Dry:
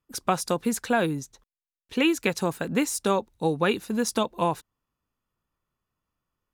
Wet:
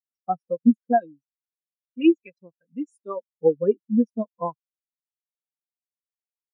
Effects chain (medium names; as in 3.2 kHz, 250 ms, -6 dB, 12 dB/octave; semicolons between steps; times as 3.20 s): 0.98–3.17 s: tilt shelf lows -5 dB, about 1.1 kHz; spectral contrast expander 4:1; trim +2 dB